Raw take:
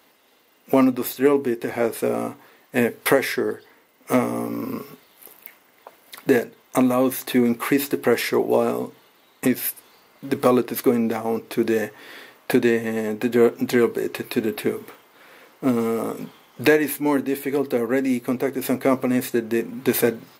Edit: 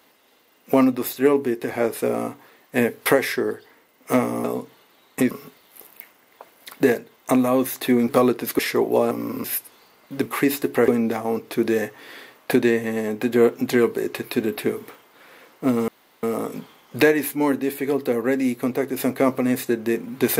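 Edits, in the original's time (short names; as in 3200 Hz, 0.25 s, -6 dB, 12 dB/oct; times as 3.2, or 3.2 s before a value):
4.44–4.77 swap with 8.69–9.56
7.55–8.17 swap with 10.38–10.88
15.88 insert room tone 0.35 s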